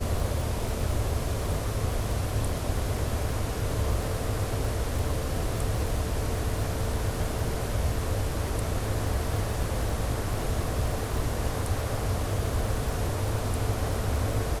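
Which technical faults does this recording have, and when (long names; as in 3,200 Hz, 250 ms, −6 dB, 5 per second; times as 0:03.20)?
surface crackle 50 per second −32 dBFS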